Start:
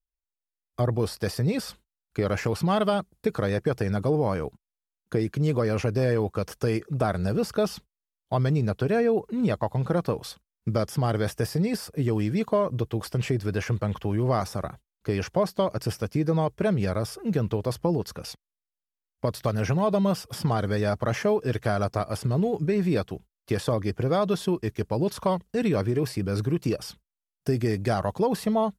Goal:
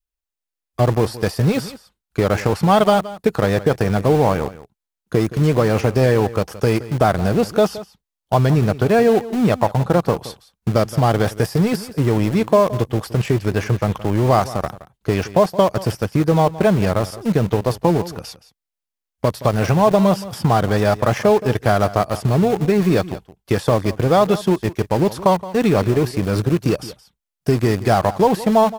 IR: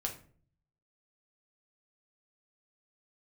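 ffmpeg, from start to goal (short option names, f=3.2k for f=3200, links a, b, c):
-filter_complex "[0:a]adynamicequalizer=threshold=0.0112:dfrequency=810:dqfactor=2.2:tfrequency=810:tqfactor=2.2:attack=5:release=100:ratio=0.375:range=2.5:mode=boostabove:tftype=bell,asplit=2[a][b];[b]aeval=exprs='val(0)*gte(abs(val(0)),0.0531)':c=same,volume=-3dB[c];[a][c]amix=inputs=2:normalize=0,aecho=1:1:171:0.15,volume=3.5dB"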